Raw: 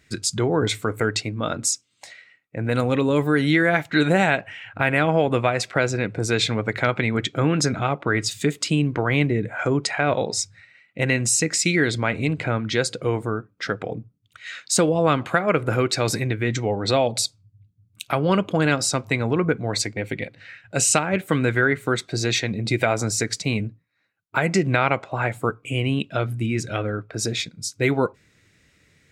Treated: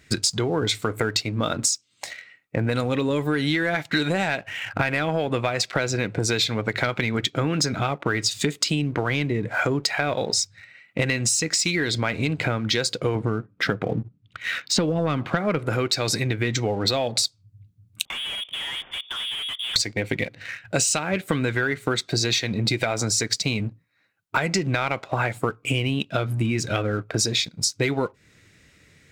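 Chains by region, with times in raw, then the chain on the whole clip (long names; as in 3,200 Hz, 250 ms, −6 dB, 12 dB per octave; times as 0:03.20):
0:13.15–0:15.59: low-pass filter 3,400 Hz + parametric band 160 Hz +6.5 dB 2.2 octaves
0:18.05–0:19.76: tube saturation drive 33 dB, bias 0.75 + output level in coarse steps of 13 dB + voice inversion scrambler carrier 3,500 Hz
whole clip: dynamic equaliser 4,500 Hz, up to +8 dB, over −40 dBFS, Q 0.97; leveller curve on the samples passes 1; downward compressor 10 to 1, threshold −26 dBFS; level +6 dB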